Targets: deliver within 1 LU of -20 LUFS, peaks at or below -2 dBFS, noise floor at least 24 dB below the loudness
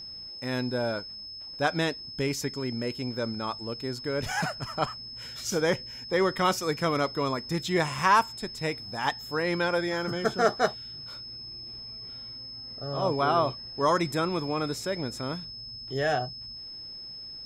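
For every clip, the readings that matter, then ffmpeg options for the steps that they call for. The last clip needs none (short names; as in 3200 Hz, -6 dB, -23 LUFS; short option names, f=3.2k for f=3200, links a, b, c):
steady tone 5200 Hz; tone level -39 dBFS; loudness -29.5 LUFS; peak -9.5 dBFS; loudness target -20.0 LUFS
-> -af "bandreject=f=5.2k:w=30"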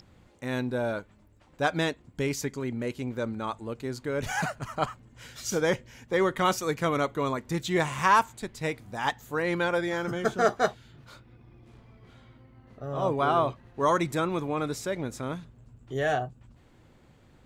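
steady tone none; loudness -29.0 LUFS; peak -9.5 dBFS; loudness target -20.0 LUFS
-> -af "volume=9dB,alimiter=limit=-2dB:level=0:latency=1"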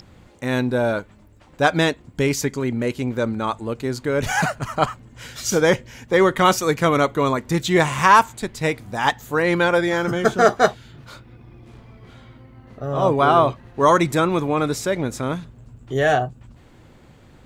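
loudness -20.0 LUFS; peak -2.0 dBFS; noise floor -49 dBFS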